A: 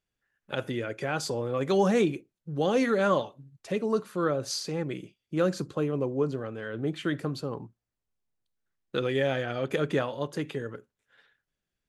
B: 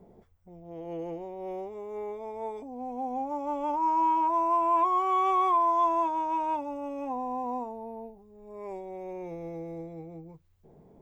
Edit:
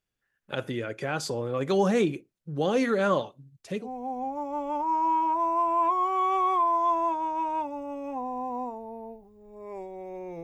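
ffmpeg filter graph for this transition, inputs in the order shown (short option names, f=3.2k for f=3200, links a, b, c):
-filter_complex "[0:a]asettb=1/sr,asplit=3[a][b][c];[a]atrim=end=3.314[d];[b]atrim=start=3.31:end=3.89,asetpts=PTS-STARTPTS,afade=t=in:d=0.004:c=qsin,afade=t=out:st=0.576:d=0.004:c=qsin,equalizer=f=930:t=o:w=3:g=-5.5[e];[c]atrim=start=3.886[f];[d][e]acrossfade=d=0.004:c1=hsin:c2=qsin[g];[g][f]acrossfade=d=0.004:c1=qsin:c2=hsin,apad=whole_dur=10.43,atrim=end=10.43,atrim=end=3.89,asetpts=PTS-STARTPTS[h];[1:a]atrim=start=2.73:end=9.37,asetpts=PTS-STARTPTS[i];[h][i]acrossfade=d=0.1:c1=tri:c2=tri"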